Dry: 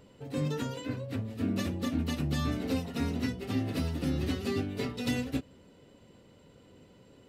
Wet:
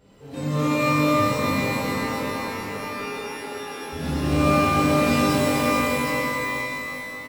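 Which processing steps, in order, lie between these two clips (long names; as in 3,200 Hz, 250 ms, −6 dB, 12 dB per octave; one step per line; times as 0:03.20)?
0:01.51–0:03.93: pair of resonant band-passes 760 Hz, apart 1.7 octaves
bouncing-ball delay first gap 440 ms, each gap 0.75×, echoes 5
reverb with rising layers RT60 2.1 s, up +12 semitones, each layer −2 dB, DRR −10 dB
level −4.5 dB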